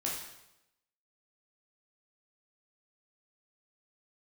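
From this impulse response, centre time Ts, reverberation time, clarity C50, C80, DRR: 51 ms, 0.90 s, 2.5 dB, 6.0 dB, -4.0 dB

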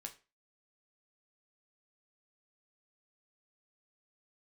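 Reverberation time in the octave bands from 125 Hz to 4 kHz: 0.30, 0.30, 0.35, 0.30, 0.30, 0.30 s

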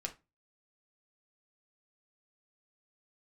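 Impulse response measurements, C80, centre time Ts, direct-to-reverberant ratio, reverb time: 23.5 dB, 8 ms, 3.0 dB, 0.25 s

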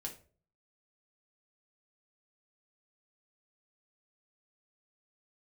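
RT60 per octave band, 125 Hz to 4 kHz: 0.70, 0.50, 0.50, 0.35, 0.30, 0.25 s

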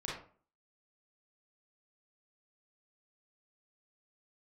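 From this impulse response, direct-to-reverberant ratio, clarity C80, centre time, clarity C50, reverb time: -5.5 dB, 8.0 dB, 47 ms, 1.5 dB, 0.45 s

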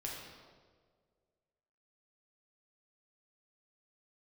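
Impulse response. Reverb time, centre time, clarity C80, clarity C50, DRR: 1.8 s, 77 ms, 3.0 dB, 1.0 dB, -3.5 dB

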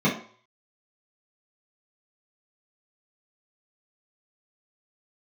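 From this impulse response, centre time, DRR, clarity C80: 27 ms, -8.5 dB, 12.5 dB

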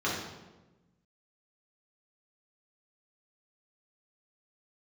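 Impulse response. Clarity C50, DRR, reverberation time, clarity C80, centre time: 1.5 dB, -7.0 dB, 1.1 s, 4.5 dB, 59 ms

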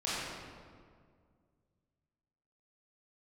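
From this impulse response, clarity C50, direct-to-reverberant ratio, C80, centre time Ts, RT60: -4.0 dB, -10.5 dB, -1.5 dB, 0.136 s, 2.0 s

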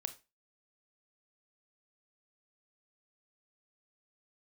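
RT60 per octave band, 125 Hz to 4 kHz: 0.25, 0.30, 0.30, 0.25, 0.25, 0.25 s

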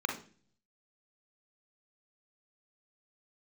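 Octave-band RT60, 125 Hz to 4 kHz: 0.85, 0.70, 0.45, 0.35, 0.40, 0.45 s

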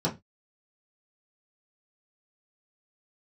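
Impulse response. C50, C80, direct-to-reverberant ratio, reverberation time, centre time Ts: 15.5 dB, 24.0 dB, -6.0 dB, 0.20 s, 15 ms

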